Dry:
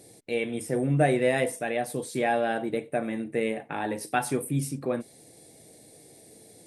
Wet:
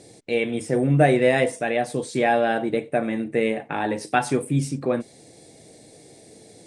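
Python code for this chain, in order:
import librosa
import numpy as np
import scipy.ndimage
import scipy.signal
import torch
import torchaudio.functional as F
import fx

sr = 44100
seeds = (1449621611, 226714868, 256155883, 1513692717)

y = scipy.signal.sosfilt(scipy.signal.butter(4, 8200.0, 'lowpass', fs=sr, output='sos'), x)
y = F.gain(torch.from_numpy(y), 5.5).numpy()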